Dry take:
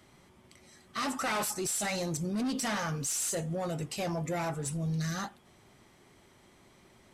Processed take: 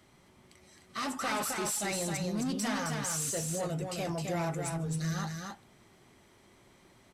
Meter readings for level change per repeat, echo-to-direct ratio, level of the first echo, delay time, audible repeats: no steady repeat, -4.0 dB, -4.0 dB, 0.264 s, 1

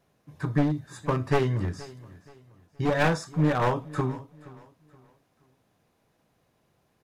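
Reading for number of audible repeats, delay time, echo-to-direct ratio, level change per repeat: 2, 0.474 s, -19.5 dB, -9.5 dB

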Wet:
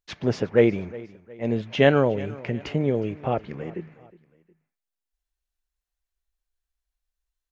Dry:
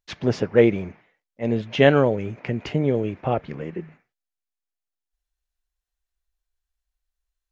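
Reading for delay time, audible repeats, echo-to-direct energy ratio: 0.362 s, 2, -19.5 dB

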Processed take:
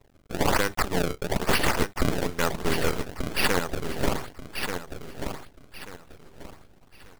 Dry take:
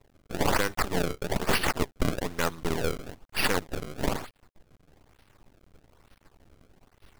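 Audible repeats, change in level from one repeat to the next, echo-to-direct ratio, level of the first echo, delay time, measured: 3, -11.0 dB, -6.5 dB, -7.0 dB, 1.186 s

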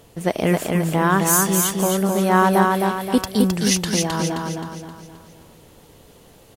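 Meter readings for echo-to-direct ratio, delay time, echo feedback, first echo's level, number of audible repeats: -2.0 dB, 0.263 s, 44%, -3.0 dB, 5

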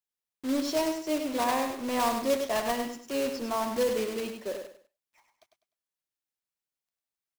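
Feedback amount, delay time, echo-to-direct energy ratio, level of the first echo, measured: 27%, 0.1 s, -6.0 dB, -6.5 dB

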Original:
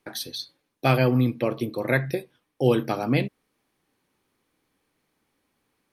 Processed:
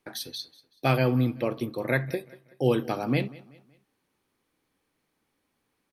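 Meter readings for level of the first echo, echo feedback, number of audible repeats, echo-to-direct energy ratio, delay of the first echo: -21.0 dB, 40%, 2, -20.5 dB, 0.189 s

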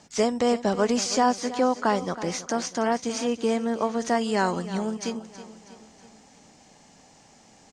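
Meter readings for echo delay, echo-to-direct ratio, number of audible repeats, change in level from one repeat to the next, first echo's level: 0.322 s, -13.0 dB, 4, -6.0 dB, -14.5 dB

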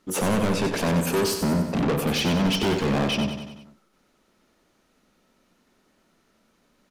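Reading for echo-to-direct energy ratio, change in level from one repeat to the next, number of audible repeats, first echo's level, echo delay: -6.0 dB, -5.0 dB, 5, -7.5 dB, 94 ms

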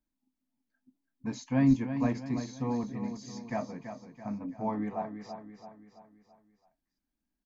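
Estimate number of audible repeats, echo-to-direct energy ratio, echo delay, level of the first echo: 5, -8.0 dB, 0.333 s, -9.0 dB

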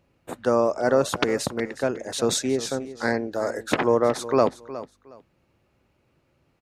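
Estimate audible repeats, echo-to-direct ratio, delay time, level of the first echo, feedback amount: 2, -15.0 dB, 0.364 s, -15.0 dB, 22%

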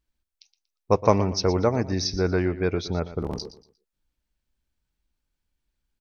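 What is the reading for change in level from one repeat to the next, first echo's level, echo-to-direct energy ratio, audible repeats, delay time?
-11.0 dB, -14.5 dB, -14.0 dB, 2, 0.118 s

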